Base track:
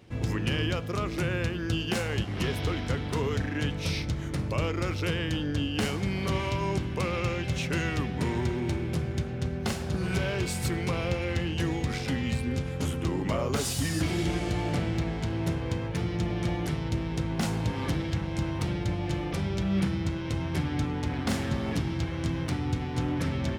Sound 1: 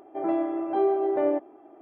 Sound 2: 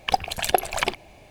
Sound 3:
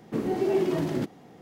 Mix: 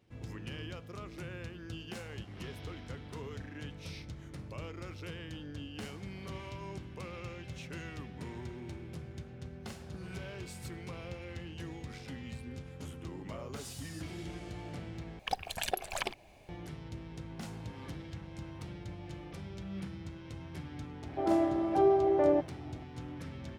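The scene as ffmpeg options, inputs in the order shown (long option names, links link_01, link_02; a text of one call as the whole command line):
ffmpeg -i bed.wav -i cue0.wav -i cue1.wav -filter_complex "[0:a]volume=-14.5dB[link_01];[2:a]alimiter=limit=-9dB:level=0:latency=1:release=265[link_02];[link_01]asplit=2[link_03][link_04];[link_03]atrim=end=15.194[link_05];[link_02]atrim=end=1.3,asetpts=PTS-STARTPTS,volume=-9dB[link_06];[link_04]atrim=start=16.486[link_07];[1:a]atrim=end=1.81,asetpts=PTS-STARTPTS,volume=-2dB,afade=type=in:duration=0.004:curve=hsin,afade=type=out:start_time=1.806:duration=0.004:curve=hsin,adelay=21020[link_08];[link_05][link_06]acrossfade=duration=0.004:curve1=hsin:curve2=hsin[link_09];[link_09][link_07]acrossfade=duration=0.004:curve1=hsin:curve2=hsin[link_10];[link_10][link_08]amix=inputs=2:normalize=0" out.wav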